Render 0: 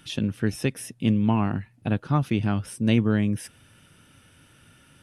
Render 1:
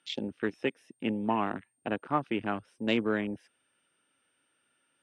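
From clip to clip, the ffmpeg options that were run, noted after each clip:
ffmpeg -i in.wav -filter_complex "[0:a]aeval=exprs='val(0)+0.00562*sin(2*PI*8700*n/s)':channel_layout=same,acrossover=split=280 5300:gain=0.0631 1 0.1[link_01][link_02][link_03];[link_01][link_02][link_03]amix=inputs=3:normalize=0,afwtdn=0.0126" out.wav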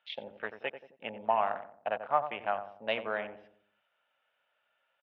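ffmpeg -i in.wav -filter_complex "[0:a]lowpass=frequency=3500:width=0.5412,lowpass=frequency=3500:width=1.3066,lowshelf=frequency=450:width_type=q:width=3:gain=-12,asplit=2[link_01][link_02];[link_02]adelay=90,lowpass=frequency=860:poles=1,volume=-8dB,asplit=2[link_03][link_04];[link_04]adelay=90,lowpass=frequency=860:poles=1,volume=0.47,asplit=2[link_05][link_06];[link_06]adelay=90,lowpass=frequency=860:poles=1,volume=0.47,asplit=2[link_07][link_08];[link_08]adelay=90,lowpass=frequency=860:poles=1,volume=0.47,asplit=2[link_09][link_10];[link_10]adelay=90,lowpass=frequency=860:poles=1,volume=0.47[link_11];[link_03][link_05][link_07][link_09][link_11]amix=inputs=5:normalize=0[link_12];[link_01][link_12]amix=inputs=2:normalize=0,volume=-2dB" out.wav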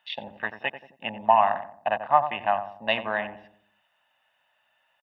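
ffmpeg -i in.wav -af "aecho=1:1:1.1:0.67,volume=6.5dB" out.wav

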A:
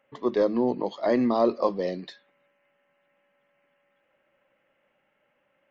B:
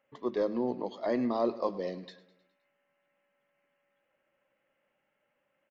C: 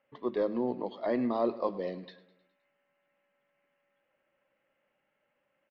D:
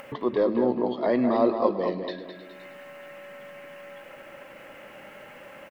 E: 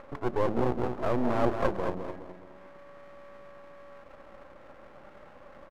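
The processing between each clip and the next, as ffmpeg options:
ffmpeg -i in.wav -af "aecho=1:1:104|208|312|416|520:0.126|0.0692|0.0381|0.0209|0.0115,volume=-7dB" out.wav
ffmpeg -i in.wav -af "lowpass=frequency=4200:width=0.5412,lowpass=frequency=4200:width=1.3066" out.wav
ffmpeg -i in.wav -filter_complex "[0:a]acompressor=mode=upward:threshold=-32dB:ratio=2.5,asplit=2[link_01][link_02];[link_02]adelay=211,lowpass=frequency=2500:poles=1,volume=-5.5dB,asplit=2[link_03][link_04];[link_04]adelay=211,lowpass=frequency=2500:poles=1,volume=0.35,asplit=2[link_05][link_06];[link_06]adelay=211,lowpass=frequency=2500:poles=1,volume=0.35,asplit=2[link_07][link_08];[link_08]adelay=211,lowpass=frequency=2500:poles=1,volume=0.35[link_09];[link_03][link_05][link_07][link_09]amix=inputs=4:normalize=0[link_10];[link_01][link_10]amix=inputs=2:normalize=0,volume=6.5dB" out.wav
ffmpeg -i in.wav -af "lowpass=frequency=1400:width=0.5412,lowpass=frequency=1400:width=1.3066,aeval=exprs='max(val(0),0)':channel_layout=same" out.wav

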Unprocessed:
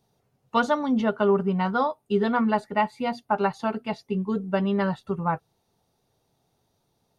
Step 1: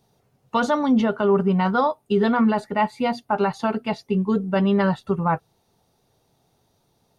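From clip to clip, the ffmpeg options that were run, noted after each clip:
ffmpeg -i in.wav -af "alimiter=limit=-16.5dB:level=0:latency=1:release=18,volume=5.5dB" out.wav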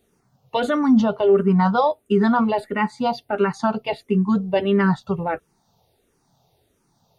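ffmpeg -i in.wav -filter_complex "[0:a]asplit=2[link_01][link_02];[link_02]afreqshift=-1.5[link_03];[link_01][link_03]amix=inputs=2:normalize=1,volume=4dB" out.wav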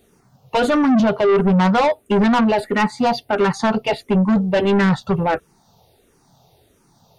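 ffmpeg -i in.wav -af "asoftclip=type=tanh:threshold=-20.5dB,volume=8.5dB" out.wav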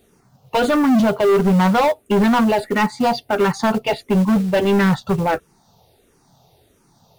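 ffmpeg -i in.wav -af "acrusher=bits=6:mode=log:mix=0:aa=0.000001" out.wav

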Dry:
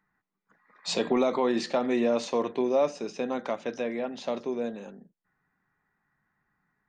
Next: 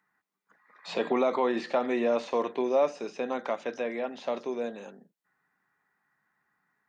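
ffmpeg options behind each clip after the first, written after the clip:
ffmpeg -i in.wav -filter_complex "[0:a]highpass=frequency=440:poles=1,acrossover=split=2900[link_01][link_02];[link_02]acompressor=threshold=-53dB:ratio=4:attack=1:release=60[link_03];[link_01][link_03]amix=inputs=2:normalize=0,volume=2dB" out.wav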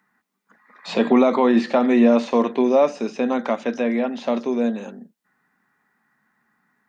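ffmpeg -i in.wav -af "equalizer=frequency=230:width_type=o:width=0.42:gain=11.5,volume=7.5dB" out.wav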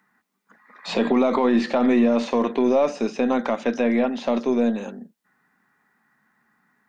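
ffmpeg -i in.wav -af "aeval=exprs='0.596*(cos(1*acos(clip(val(0)/0.596,-1,1)))-cos(1*PI/2))+0.00944*(cos(8*acos(clip(val(0)/0.596,-1,1)))-cos(8*PI/2))':channel_layout=same,alimiter=limit=-12dB:level=0:latency=1:release=48,volume=1.5dB" out.wav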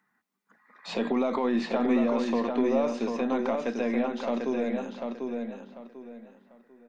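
ffmpeg -i in.wav -filter_complex "[0:a]asplit=2[link_01][link_02];[link_02]adelay=744,lowpass=frequency=4400:poles=1,volume=-4.5dB,asplit=2[link_03][link_04];[link_04]adelay=744,lowpass=frequency=4400:poles=1,volume=0.28,asplit=2[link_05][link_06];[link_06]adelay=744,lowpass=frequency=4400:poles=1,volume=0.28,asplit=2[link_07][link_08];[link_08]adelay=744,lowpass=frequency=4400:poles=1,volume=0.28[link_09];[link_01][link_03][link_05][link_07][link_09]amix=inputs=5:normalize=0,volume=-7.5dB" out.wav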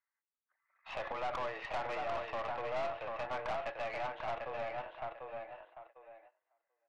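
ffmpeg -i in.wav -af "agate=range=-16dB:threshold=-47dB:ratio=16:detection=peak,highpass=frequency=520:width_type=q:width=0.5412,highpass=frequency=520:width_type=q:width=1.307,lowpass=frequency=2900:width_type=q:width=0.5176,lowpass=frequency=2900:width_type=q:width=0.7071,lowpass=frequency=2900:width_type=q:width=1.932,afreqshift=98,aeval=exprs='(tanh(39.8*val(0)+0.55)-tanh(0.55))/39.8':channel_layout=same,volume=-1dB" out.wav

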